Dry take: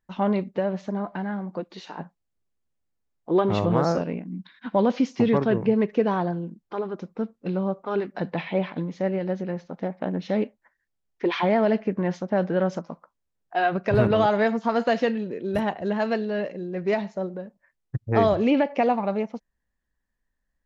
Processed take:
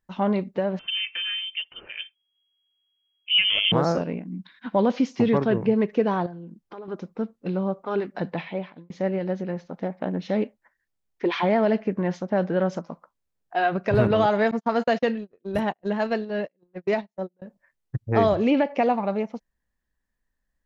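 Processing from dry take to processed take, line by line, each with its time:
0:00.79–0:03.72: voice inversion scrambler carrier 3,300 Hz
0:06.26–0:06.88: downward compressor 3 to 1, threshold −38 dBFS
0:08.27–0:08.90: fade out
0:14.51–0:17.42: noise gate −28 dBFS, range −39 dB

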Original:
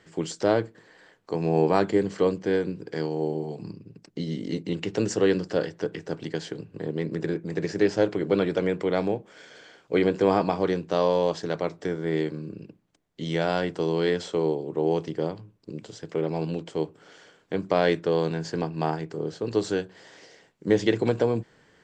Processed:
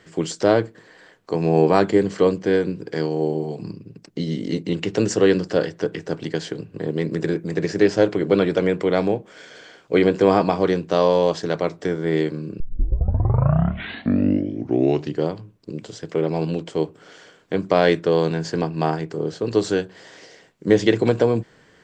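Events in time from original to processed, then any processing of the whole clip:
0:06.88–0:07.52: high-shelf EQ 6,600 Hz +6.5 dB
0:12.60: tape start 2.68 s
whole clip: notch filter 860 Hz, Q 19; level +5.5 dB

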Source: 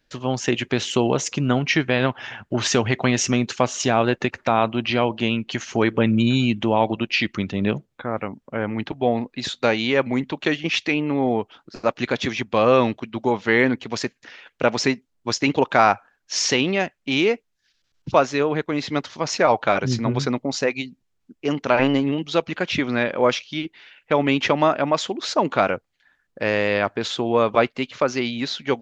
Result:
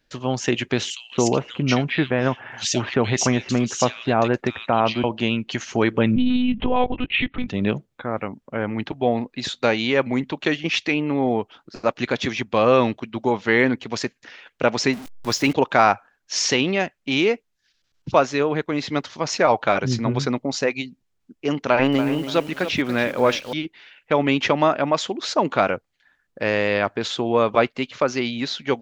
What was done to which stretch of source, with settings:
0:00.90–0:05.04: multiband delay without the direct sound highs, lows 220 ms, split 2,300 Hz
0:06.16–0:07.48: one-pitch LPC vocoder at 8 kHz 250 Hz
0:14.93–0:15.53: converter with a step at zero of −31 dBFS
0:21.57–0:23.53: feedback echo at a low word length 285 ms, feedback 35%, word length 6 bits, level −10.5 dB

